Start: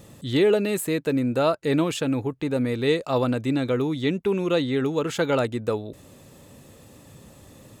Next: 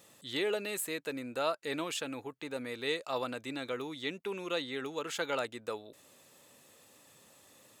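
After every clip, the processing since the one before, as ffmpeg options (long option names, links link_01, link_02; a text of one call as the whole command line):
ffmpeg -i in.wav -af "highpass=frequency=1100:poles=1,volume=-5dB" out.wav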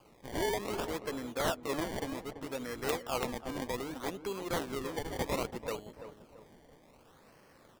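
ffmpeg -i in.wav -filter_complex "[0:a]acrusher=samples=23:mix=1:aa=0.000001:lfo=1:lforange=23:lforate=0.64,asplit=2[link_01][link_02];[link_02]adelay=336,lowpass=frequency=1300:poles=1,volume=-10dB,asplit=2[link_03][link_04];[link_04]adelay=336,lowpass=frequency=1300:poles=1,volume=0.42,asplit=2[link_05][link_06];[link_06]adelay=336,lowpass=frequency=1300:poles=1,volume=0.42,asplit=2[link_07][link_08];[link_08]adelay=336,lowpass=frequency=1300:poles=1,volume=0.42[link_09];[link_01][link_03][link_05][link_07][link_09]amix=inputs=5:normalize=0,aeval=exprs='(mod(11.9*val(0)+1,2)-1)/11.9':channel_layout=same" out.wav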